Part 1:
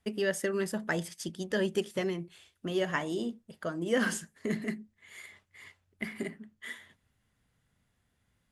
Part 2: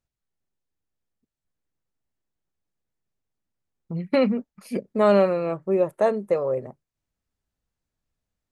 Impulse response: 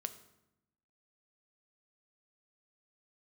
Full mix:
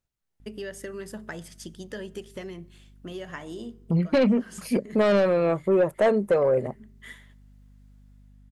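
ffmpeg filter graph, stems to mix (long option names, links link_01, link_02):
-filter_complex "[0:a]acompressor=threshold=-31dB:ratio=6,aeval=exprs='val(0)+0.00355*(sin(2*PI*50*n/s)+sin(2*PI*2*50*n/s)/2+sin(2*PI*3*50*n/s)/3+sin(2*PI*4*50*n/s)/4+sin(2*PI*5*50*n/s)/5)':channel_layout=same,adelay=400,volume=-5dB,asplit=2[link_01][link_02];[link_02]volume=-6.5dB[link_03];[1:a]aeval=exprs='0.398*(cos(1*acos(clip(val(0)/0.398,-1,1)))-cos(1*PI/2))+0.0631*(cos(5*acos(clip(val(0)/0.398,-1,1)))-cos(5*PI/2))':channel_layout=same,dynaudnorm=framelen=210:gausssize=5:maxgain=10dB,volume=-5dB,asplit=2[link_04][link_05];[link_05]apad=whole_len=392952[link_06];[link_01][link_06]sidechaincompress=threshold=-38dB:ratio=8:attack=16:release=130[link_07];[2:a]atrim=start_sample=2205[link_08];[link_03][link_08]afir=irnorm=-1:irlink=0[link_09];[link_07][link_04][link_09]amix=inputs=3:normalize=0,asoftclip=type=hard:threshold=-9.5dB,alimiter=limit=-15dB:level=0:latency=1:release=226"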